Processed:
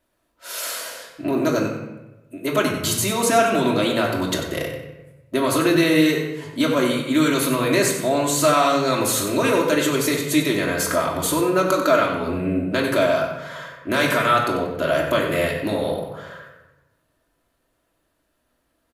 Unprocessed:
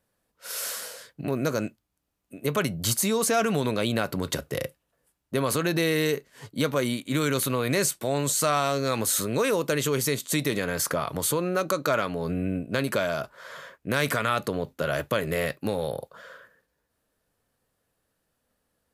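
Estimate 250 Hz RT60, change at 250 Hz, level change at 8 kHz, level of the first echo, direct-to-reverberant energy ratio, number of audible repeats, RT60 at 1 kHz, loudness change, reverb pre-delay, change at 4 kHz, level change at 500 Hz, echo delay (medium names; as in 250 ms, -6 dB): 1.1 s, +8.0 dB, +3.0 dB, -9.0 dB, -2.0 dB, 1, 0.95 s, +6.0 dB, 3 ms, +6.0 dB, +6.5 dB, 93 ms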